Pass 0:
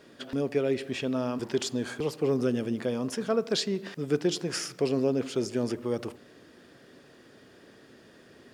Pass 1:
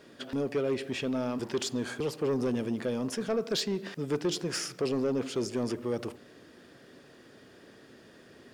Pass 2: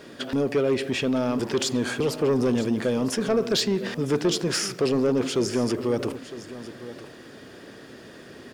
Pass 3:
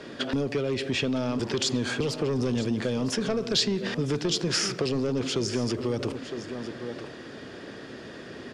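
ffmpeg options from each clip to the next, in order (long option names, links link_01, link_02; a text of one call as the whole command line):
ffmpeg -i in.wav -af "asoftclip=type=tanh:threshold=-22.5dB" out.wav
ffmpeg -i in.wav -filter_complex "[0:a]asplit=2[link_01][link_02];[link_02]alimiter=level_in=7.5dB:limit=-24dB:level=0:latency=1:release=35,volume=-7.5dB,volume=-2dB[link_03];[link_01][link_03]amix=inputs=2:normalize=0,aecho=1:1:958:0.188,volume=4.5dB" out.wav
ffmpeg -i in.wav -filter_complex "[0:a]lowpass=6100,acrossover=split=140|3000[link_01][link_02][link_03];[link_02]acompressor=threshold=-30dB:ratio=4[link_04];[link_01][link_04][link_03]amix=inputs=3:normalize=0,volume=3dB" out.wav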